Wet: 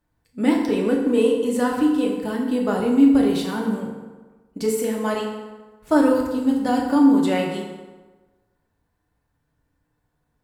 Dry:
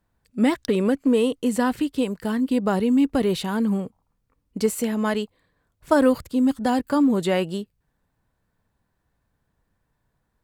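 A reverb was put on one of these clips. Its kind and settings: FDN reverb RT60 1.3 s, low-frequency decay 0.9×, high-frequency decay 0.65×, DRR -1.5 dB; trim -3.5 dB

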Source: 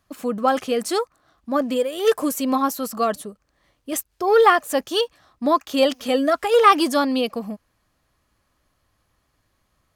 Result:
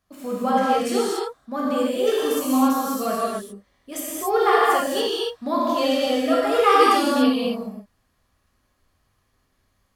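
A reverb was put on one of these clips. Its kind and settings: gated-style reverb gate 310 ms flat, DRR -7.5 dB; trim -8.5 dB

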